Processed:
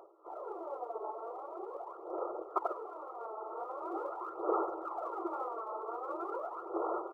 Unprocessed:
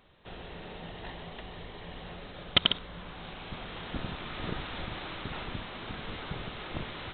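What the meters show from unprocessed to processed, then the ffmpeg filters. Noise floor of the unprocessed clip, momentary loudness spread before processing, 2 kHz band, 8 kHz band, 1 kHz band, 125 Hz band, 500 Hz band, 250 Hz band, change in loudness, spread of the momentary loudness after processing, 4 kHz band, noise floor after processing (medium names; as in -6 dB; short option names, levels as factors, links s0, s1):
-46 dBFS, 16 LU, under -20 dB, no reading, +5.0 dB, under -40 dB, +6.0 dB, -3.0 dB, -3.5 dB, 9 LU, under -40 dB, -49 dBFS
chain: -af "acompressor=mode=upward:threshold=0.00141:ratio=2.5,afftfilt=real='hypot(re,im)*cos(2*PI*random(0))':imag='hypot(re,im)*sin(2*PI*random(1))':win_size=512:overlap=0.75,afftfilt=real='re*between(b*sr/4096,320,1400)':imag='im*between(b*sr/4096,320,1400)':win_size=4096:overlap=0.75,aphaser=in_gain=1:out_gain=1:delay=4.6:decay=0.68:speed=0.43:type=sinusoidal,aecho=1:1:196:0.0841,volume=2.66"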